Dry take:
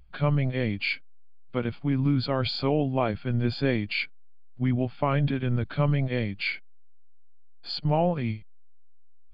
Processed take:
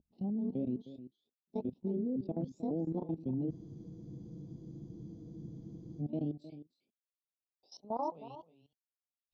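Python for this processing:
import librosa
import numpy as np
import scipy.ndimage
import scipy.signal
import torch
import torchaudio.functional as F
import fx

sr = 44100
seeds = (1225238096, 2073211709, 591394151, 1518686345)

y = fx.pitch_ramps(x, sr, semitones=10.5, every_ms=541)
y = fx.env_lowpass_down(y, sr, base_hz=1300.0, full_db=-20.0)
y = scipy.signal.sosfilt(scipy.signal.cheby1(2, 1.0, [700.0, 3700.0], 'bandstop', fs=sr, output='sos'), y)
y = fx.high_shelf(y, sr, hz=3600.0, db=9.5)
y = fx.rider(y, sr, range_db=10, speed_s=0.5)
y = fx.filter_sweep_bandpass(y, sr, from_hz=250.0, to_hz=2000.0, start_s=6.83, end_s=8.98, q=1.8)
y = fx.level_steps(y, sr, step_db=18)
y = y + 10.0 ** (-14.0 / 20.0) * np.pad(y, (int(311 * sr / 1000.0), 0))[:len(y)]
y = fx.spec_freeze(y, sr, seeds[0], at_s=3.53, hold_s=2.47)
y = y * 10.0 ** (2.0 / 20.0)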